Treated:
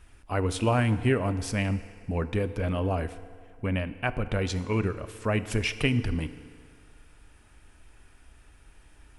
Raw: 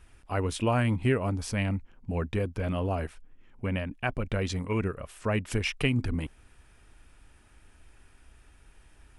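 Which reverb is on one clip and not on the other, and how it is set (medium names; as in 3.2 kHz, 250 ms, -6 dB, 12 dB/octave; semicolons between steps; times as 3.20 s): FDN reverb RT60 2.1 s, low-frequency decay 0.75×, high-frequency decay 0.8×, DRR 12 dB; trim +1.5 dB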